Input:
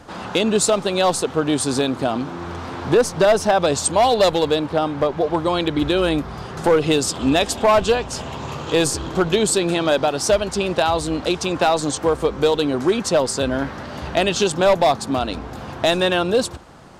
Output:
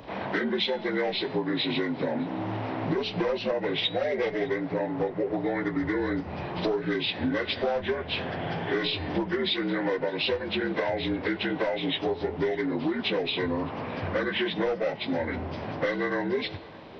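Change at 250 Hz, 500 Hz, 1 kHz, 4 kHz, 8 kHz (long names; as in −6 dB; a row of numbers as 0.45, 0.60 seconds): −7.0 dB, −10.5 dB, −13.0 dB, −6.5 dB, below −35 dB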